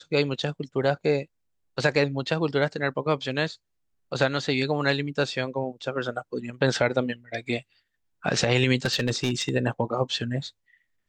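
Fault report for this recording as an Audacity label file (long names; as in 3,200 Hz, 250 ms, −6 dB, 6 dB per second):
8.850000	9.500000	clipping −18.5 dBFS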